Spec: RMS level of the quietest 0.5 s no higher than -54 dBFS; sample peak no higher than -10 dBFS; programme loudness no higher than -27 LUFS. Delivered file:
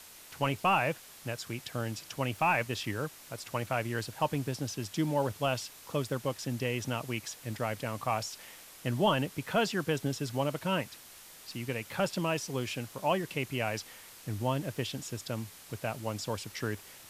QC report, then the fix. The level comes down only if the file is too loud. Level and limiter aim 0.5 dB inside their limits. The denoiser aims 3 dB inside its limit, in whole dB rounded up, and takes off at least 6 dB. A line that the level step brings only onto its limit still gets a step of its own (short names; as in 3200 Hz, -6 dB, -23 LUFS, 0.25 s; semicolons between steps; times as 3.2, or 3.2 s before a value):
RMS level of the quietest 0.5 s -52 dBFS: fail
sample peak -17.0 dBFS: OK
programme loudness -33.5 LUFS: OK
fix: denoiser 6 dB, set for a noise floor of -52 dBFS